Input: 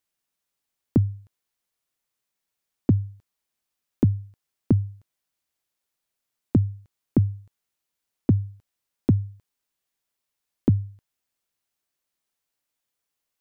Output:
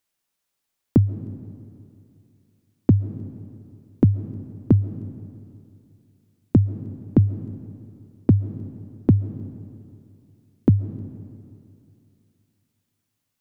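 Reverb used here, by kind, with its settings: algorithmic reverb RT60 2.6 s, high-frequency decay 0.75×, pre-delay 95 ms, DRR 13.5 dB; trim +3.5 dB

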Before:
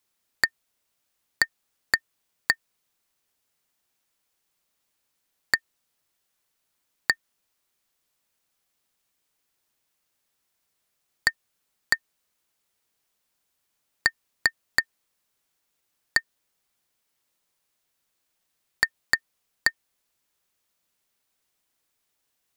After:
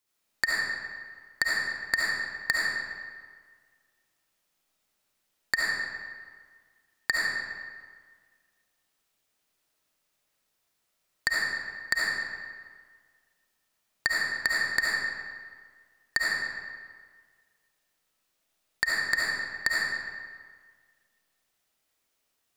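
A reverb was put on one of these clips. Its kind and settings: algorithmic reverb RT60 1.7 s, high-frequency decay 0.75×, pre-delay 30 ms, DRR -5.5 dB; trim -5 dB

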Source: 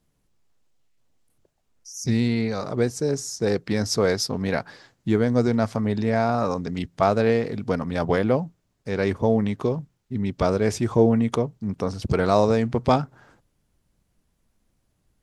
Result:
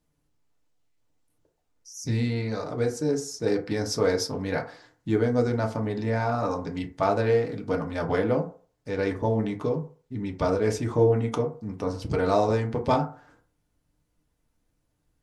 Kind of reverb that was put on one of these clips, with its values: FDN reverb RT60 0.41 s, low-frequency decay 0.75×, high-frequency decay 0.4×, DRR 1.5 dB; trim -5.5 dB

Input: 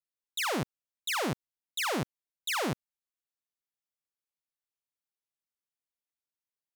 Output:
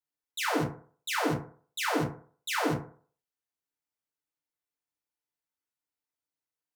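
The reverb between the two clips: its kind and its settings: FDN reverb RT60 0.46 s, low-frequency decay 0.85×, high-frequency decay 0.4×, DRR -5 dB; trim -4.5 dB

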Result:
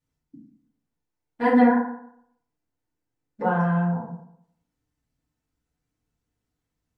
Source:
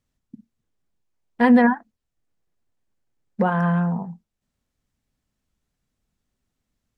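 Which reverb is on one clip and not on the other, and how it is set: FDN reverb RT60 0.7 s, low-frequency decay 0.95×, high-frequency decay 0.5×, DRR -9.5 dB; trim -12.5 dB

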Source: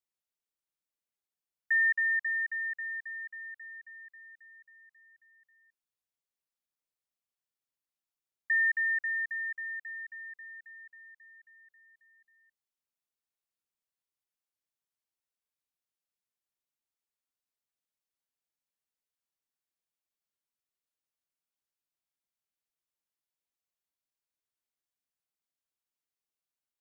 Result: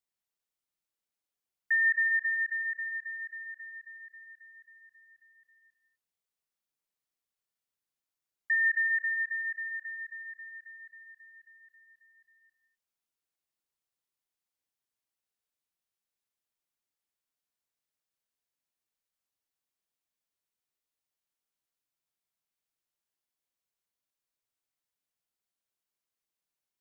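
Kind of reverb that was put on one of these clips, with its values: gated-style reverb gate 280 ms flat, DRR 5 dB

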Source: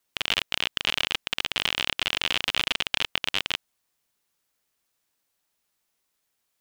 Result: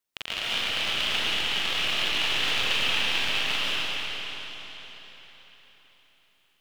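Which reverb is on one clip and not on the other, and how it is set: algorithmic reverb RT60 4.3 s, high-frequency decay 0.95×, pre-delay 100 ms, DRR -9.5 dB; trim -8.5 dB

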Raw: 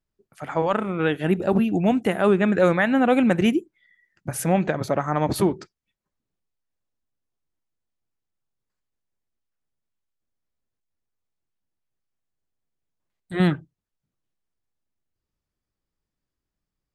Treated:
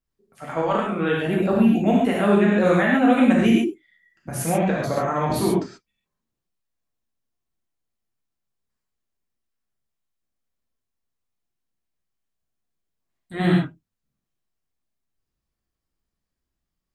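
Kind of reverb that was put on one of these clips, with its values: gated-style reverb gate 160 ms flat, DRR -4 dB; trim -4 dB

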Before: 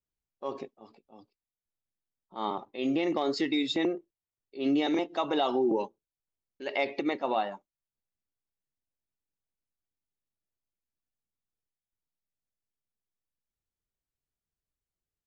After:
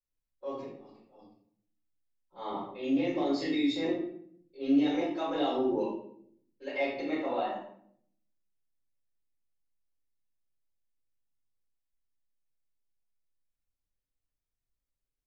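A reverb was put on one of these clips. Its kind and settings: simulated room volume 110 m³, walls mixed, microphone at 4.8 m; trim -18 dB

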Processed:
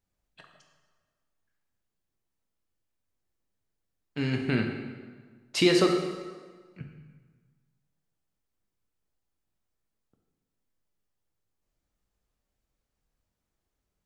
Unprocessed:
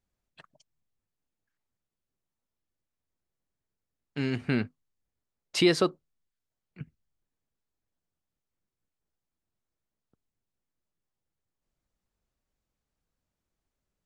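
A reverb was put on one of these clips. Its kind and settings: plate-style reverb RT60 1.5 s, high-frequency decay 0.8×, DRR 2 dB

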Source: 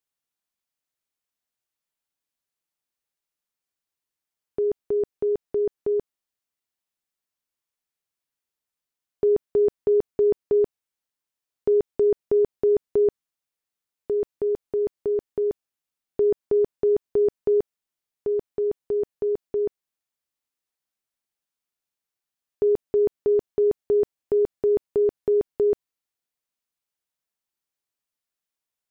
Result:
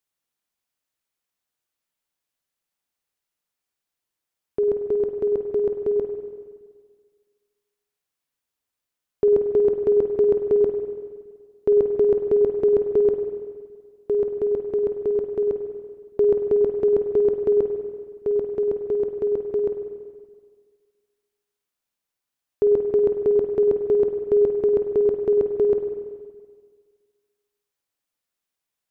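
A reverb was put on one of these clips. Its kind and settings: spring tank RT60 1.7 s, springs 47/51 ms, chirp 55 ms, DRR 5 dB; trim +2.5 dB

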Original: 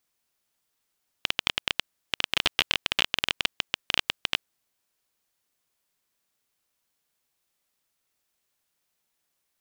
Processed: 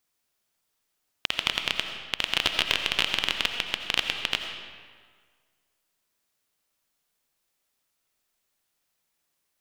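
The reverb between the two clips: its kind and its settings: algorithmic reverb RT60 1.7 s, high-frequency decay 0.75×, pre-delay 45 ms, DRR 5 dB

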